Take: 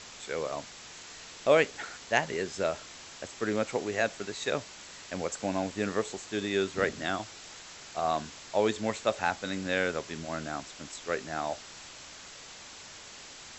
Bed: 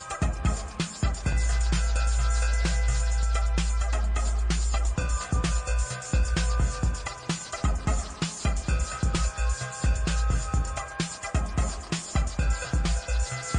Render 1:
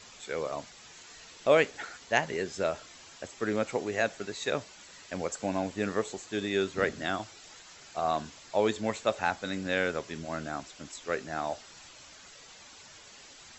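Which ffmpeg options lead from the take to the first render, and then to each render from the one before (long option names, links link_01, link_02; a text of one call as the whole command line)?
ffmpeg -i in.wav -af "afftdn=noise_reduction=8:noise_floor=-48" out.wav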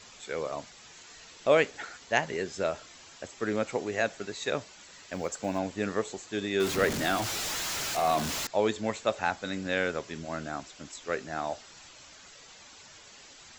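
ffmpeg -i in.wav -filter_complex "[0:a]asettb=1/sr,asplit=3[link_01][link_02][link_03];[link_01]atrim=end=4.974[link_04];[link_02]atrim=start=4.97:end=5.59,asetpts=PTS-STARTPTS,afade=type=in:duration=0.004:curve=qsin,afade=type=out:start_time=0.616:duration=0.004:curve=qsin,acrusher=bits=9:mode=log:mix=0:aa=0.000001[link_05];[link_03]atrim=start=5.586[link_06];[link_04][link_05]acrossfade=duration=0.004:curve1=hsin:curve2=qsin[link_07];[link_07][link_06]acrossfade=duration=0.004:curve1=qsin:curve2=hsin,asettb=1/sr,asplit=3[link_08][link_09][link_10];[link_08]atrim=end=6.604[link_11];[link_09]atrim=start=6.6:end=8.47,asetpts=PTS-STARTPTS,afade=type=in:duration=0.004:curve=qsin,afade=type=out:start_time=1.866:duration=0.004:curve=qsin,aeval=exprs='val(0)+0.5*0.0398*sgn(val(0))':channel_layout=same[link_12];[link_10]atrim=start=8.466[link_13];[link_11][link_12]acrossfade=duration=0.004:curve1=hsin:curve2=qsin[link_14];[link_14][link_13]acrossfade=duration=0.004:curve1=qsin:curve2=hsin" out.wav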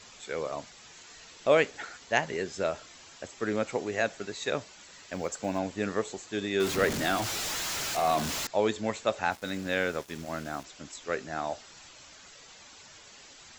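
ffmpeg -i in.wav -filter_complex "[0:a]asplit=3[link_01][link_02][link_03];[link_01]afade=type=out:start_time=9.3:duration=0.02[link_04];[link_02]aeval=exprs='val(0)*gte(abs(val(0)),0.00596)':channel_layout=same,afade=type=in:start_time=9.3:duration=0.02,afade=type=out:start_time=10.63:duration=0.02[link_05];[link_03]afade=type=in:start_time=10.63:duration=0.02[link_06];[link_04][link_05][link_06]amix=inputs=3:normalize=0" out.wav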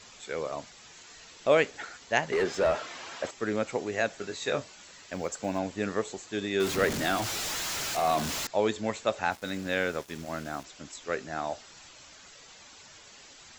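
ffmpeg -i in.wav -filter_complex "[0:a]asettb=1/sr,asplit=3[link_01][link_02][link_03];[link_01]atrim=end=2.324[link_04];[link_02]atrim=start=2.32:end=3.31,asetpts=PTS-STARTPTS,afade=type=in:duration=0.004:curve=qsin,afade=type=out:start_time=0.986:duration=0.004:curve=qsin,asplit=2[link_05][link_06];[link_06]highpass=frequency=720:poles=1,volume=23dB,asoftclip=type=tanh:threshold=-15.5dB[link_07];[link_05][link_07]amix=inputs=2:normalize=0,lowpass=frequency=1300:poles=1,volume=-6dB[link_08];[link_03]atrim=start=3.306[link_09];[link_04][link_08]acrossfade=duration=0.004:curve1=hsin:curve2=qsin[link_10];[link_10][link_09]acrossfade=duration=0.004:curve1=qsin:curve2=hsin,asettb=1/sr,asplit=3[link_11][link_12][link_13];[link_11]atrim=end=4.164[link_14];[link_12]atrim=start=4.16:end=4.92,asetpts=PTS-STARTPTS,afade=type=in:duration=0.004:curve=qsin,afade=type=out:start_time=0.756:duration=0.004:curve=qsin,asplit=2[link_15][link_16];[link_16]adelay=22,volume=-7dB[link_17];[link_15][link_17]amix=inputs=2:normalize=0,atrim=end_sample=33516[link_18];[link_13]atrim=start=4.916[link_19];[link_14][link_18]acrossfade=duration=0.004:curve1=hsin:curve2=qsin[link_20];[link_20][link_19]acrossfade=duration=0.004:curve1=qsin:curve2=hsin" out.wav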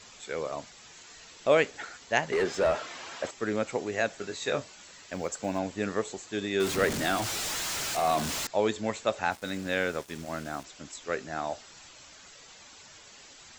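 ffmpeg -i in.wav -af "equalizer=frequency=8600:width_type=o:width=0.24:gain=4.5" out.wav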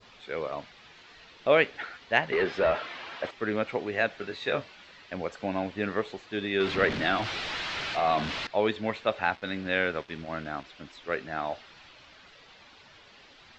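ffmpeg -i in.wav -af "lowpass=frequency=4100:width=0.5412,lowpass=frequency=4100:width=1.3066,adynamicequalizer=threshold=0.01:dfrequency=2300:dqfactor=0.74:tfrequency=2300:tqfactor=0.74:attack=5:release=100:ratio=0.375:range=2:mode=boostabove:tftype=bell" out.wav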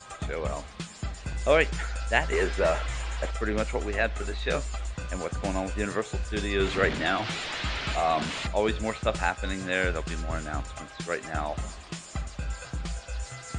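ffmpeg -i in.wav -i bed.wav -filter_complex "[1:a]volume=-8dB[link_01];[0:a][link_01]amix=inputs=2:normalize=0" out.wav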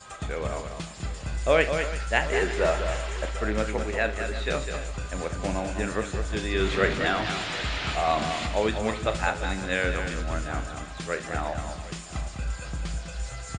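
ffmpeg -i in.wav -filter_complex "[0:a]asplit=2[link_01][link_02];[link_02]adelay=37,volume=-12dB[link_03];[link_01][link_03]amix=inputs=2:normalize=0,aecho=1:1:72|203|340|756:0.133|0.422|0.168|0.141" out.wav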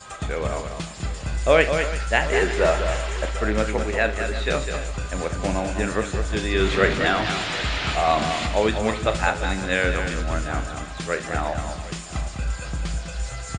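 ffmpeg -i in.wav -af "volume=4.5dB,alimiter=limit=-3dB:level=0:latency=1" out.wav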